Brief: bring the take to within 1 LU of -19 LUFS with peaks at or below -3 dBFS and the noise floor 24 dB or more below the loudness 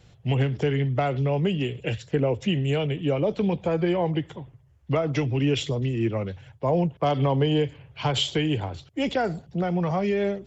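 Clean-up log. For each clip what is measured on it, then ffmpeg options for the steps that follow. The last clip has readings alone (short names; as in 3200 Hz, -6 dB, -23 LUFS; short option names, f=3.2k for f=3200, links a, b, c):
loudness -25.5 LUFS; peak -11.0 dBFS; loudness target -19.0 LUFS
-> -af "volume=6.5dB"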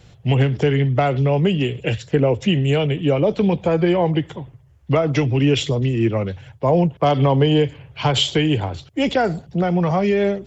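loudness -19.0 LUFS; peak -4.5 dBFS; noise floor -50 dBFS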